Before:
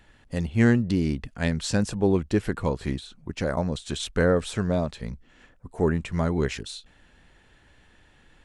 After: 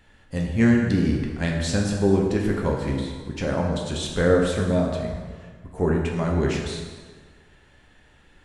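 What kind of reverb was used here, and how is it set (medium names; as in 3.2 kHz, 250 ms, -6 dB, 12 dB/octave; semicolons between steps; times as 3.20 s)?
plate-style reverb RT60 1.6 s, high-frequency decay 0.7×, DRR -0.5 dB; trim -1 dB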